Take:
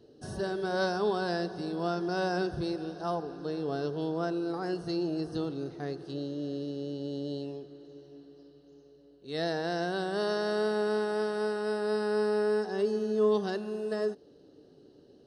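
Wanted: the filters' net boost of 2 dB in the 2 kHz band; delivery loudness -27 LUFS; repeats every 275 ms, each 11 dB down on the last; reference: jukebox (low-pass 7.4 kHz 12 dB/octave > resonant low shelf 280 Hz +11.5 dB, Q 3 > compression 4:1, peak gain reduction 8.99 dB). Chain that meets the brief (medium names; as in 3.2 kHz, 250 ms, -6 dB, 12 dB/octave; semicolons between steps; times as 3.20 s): low-pass 7.4 kHz 12 dB/octave; resonant low shelf 280 Hz +11.5 dB, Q 3; peaking EQ 2 kHz +3.5 dB; feedback delay 275 ms, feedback 28%, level -11 dB; compression 4:1, threshold -24 dBFS; trim +0.5 dB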